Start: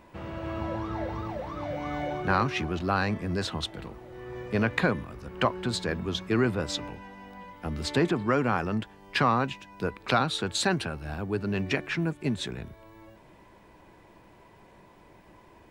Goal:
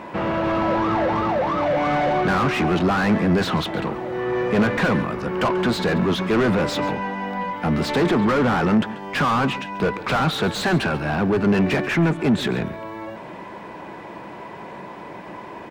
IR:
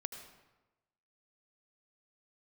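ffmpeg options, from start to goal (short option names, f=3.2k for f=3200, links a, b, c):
-filter_complex "[0:a]asplit=2[a][b];[b]highpass=f=720:p=1,volume=33dB,asoftclip=type=tanh:threshold=-8dB[c];[a][c]amix=inputs=2:normalize=0,lowpass=f=1.4k:p=1,volume=-6dB,equalizer=f=180:w=1.3:g=6.5,aecho=1:1:138:0.15,volume=-3.5dB"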